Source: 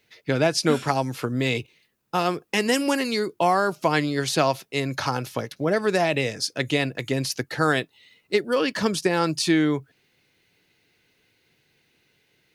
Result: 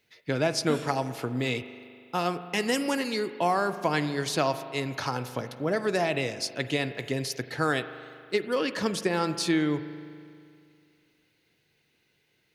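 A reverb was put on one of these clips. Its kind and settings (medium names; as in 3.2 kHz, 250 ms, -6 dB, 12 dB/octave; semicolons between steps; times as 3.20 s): spring tank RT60 2.3 s, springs 40 ms, chirp 60 ms, DRR 11.5 dB; trim -5 dB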